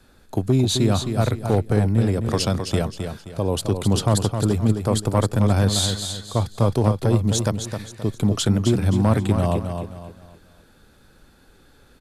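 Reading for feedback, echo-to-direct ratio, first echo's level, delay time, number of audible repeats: 34%, -6.5 dB, -7.0 dB, 0.263 s, 3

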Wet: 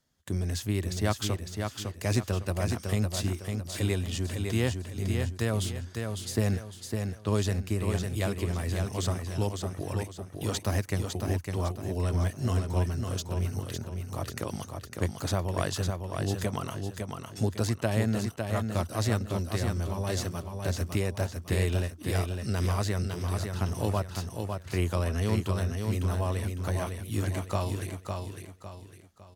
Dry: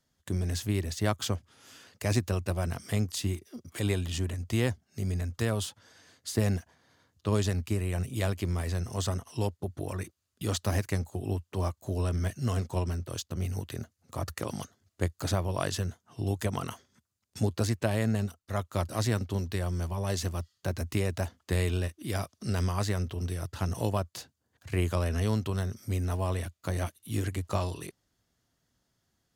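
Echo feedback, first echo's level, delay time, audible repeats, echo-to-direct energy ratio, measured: 36%, -5.0 dB, 0.555 s, 4, -4.5 dB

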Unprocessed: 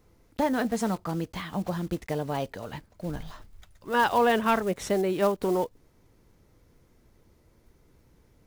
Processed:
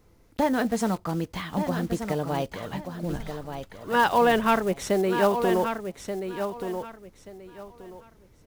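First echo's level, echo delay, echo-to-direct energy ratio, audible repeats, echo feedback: -8.0 dB, 1.181 s, -8.0 dB, 3, 23%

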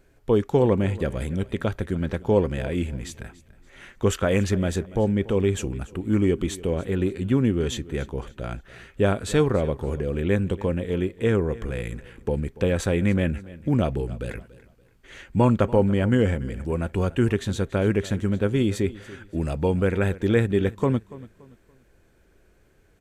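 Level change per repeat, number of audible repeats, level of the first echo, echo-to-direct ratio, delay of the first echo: -9.5 dB, 2, -19.0 dB, -18.5 dB, 0.286 s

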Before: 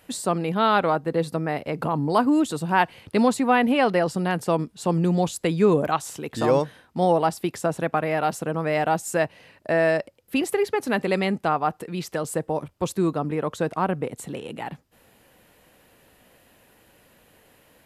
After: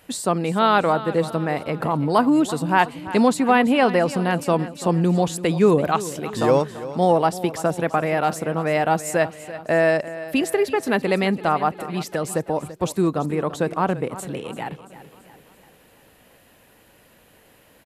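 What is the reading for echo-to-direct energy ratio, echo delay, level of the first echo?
-13.5 dB, 0.337 s, -15.0 dB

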